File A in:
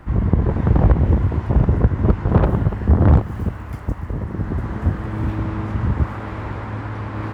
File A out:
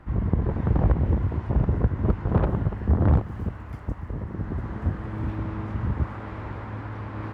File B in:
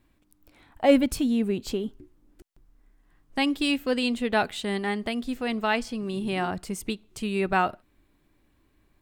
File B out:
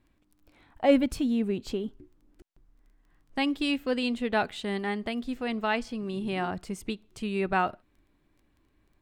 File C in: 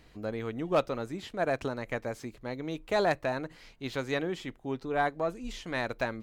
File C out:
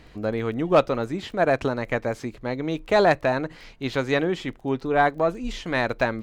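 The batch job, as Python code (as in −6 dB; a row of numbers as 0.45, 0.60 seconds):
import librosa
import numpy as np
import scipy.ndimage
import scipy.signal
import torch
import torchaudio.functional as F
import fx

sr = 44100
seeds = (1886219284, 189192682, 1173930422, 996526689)

y = fx.high_shelf(x, sr, hz=7100.0, db=-9.5)
y = fx.dmg_crackle(y, sr, seeds[0], per_s=11.0, level_db=-50.0)
y = y * 10.0 ** (-9 / 20.0) / np.max(np.abs(y))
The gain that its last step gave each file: −6.5, −2.5, +9.0 decibels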